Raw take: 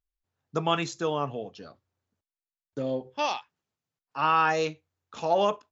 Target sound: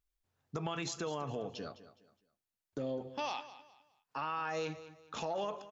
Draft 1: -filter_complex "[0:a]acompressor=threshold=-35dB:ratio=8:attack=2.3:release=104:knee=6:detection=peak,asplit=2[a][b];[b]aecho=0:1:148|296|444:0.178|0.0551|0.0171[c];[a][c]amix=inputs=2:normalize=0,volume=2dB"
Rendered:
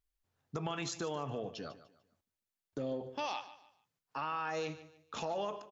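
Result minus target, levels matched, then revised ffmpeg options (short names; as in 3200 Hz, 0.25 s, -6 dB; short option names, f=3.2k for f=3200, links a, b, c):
echo 60 ms early
-filter_complex "[0:a]acompressor=threshold=-35dB:ratio=8:attack=2.3:release=104:knee=6:detection=peak,asplit=2[a][b];[b]aecho=0:1:208|416|624:0.178|0.0551|0.0171[c];[a][c]amix=inputs=2:normalize=0,volume=2dB"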